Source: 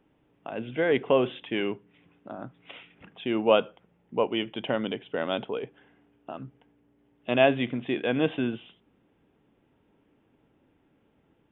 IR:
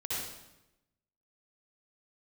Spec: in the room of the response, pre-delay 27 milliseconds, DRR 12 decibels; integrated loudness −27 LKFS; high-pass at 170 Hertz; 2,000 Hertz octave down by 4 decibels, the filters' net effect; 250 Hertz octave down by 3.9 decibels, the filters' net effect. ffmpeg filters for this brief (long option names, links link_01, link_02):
-filter_complex "[0:a]highpass=170,equalizer=frequency=250:width_type=o:gain=-4,equalizer=frequency=2000:width_type=o:gain=-5.5,asplit=2[link_01][link_02];[1:a]atrim=start_sample=2205,adelay=27[link_03];[link_02][link_03]afir=irnorm=-1:irlink=0,volume=-16dB[link_04];[link_01][link_04]amix=inputs=2:normalize=0,volume=2dB"